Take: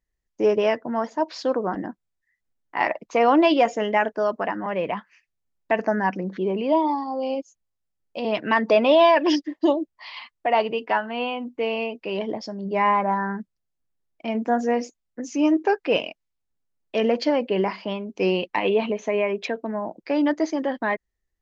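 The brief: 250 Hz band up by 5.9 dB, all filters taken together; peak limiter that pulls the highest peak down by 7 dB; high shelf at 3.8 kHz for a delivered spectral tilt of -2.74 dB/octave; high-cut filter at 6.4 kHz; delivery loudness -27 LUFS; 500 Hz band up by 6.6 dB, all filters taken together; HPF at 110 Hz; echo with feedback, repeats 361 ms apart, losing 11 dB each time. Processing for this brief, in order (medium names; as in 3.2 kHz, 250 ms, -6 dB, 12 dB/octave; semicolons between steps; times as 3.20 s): high-pass 110 Hz; low-pass 6.4 kHz; peaking EQ 250 Hz +5 dB; peaking EQ 500 Hz +7.5 dB; treble shelf 3.8 kHz -8 dB; peak limiter -8.5 dBFS; feedback delay 361 ms, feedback 28%, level -11 dB; trim -7.5 dB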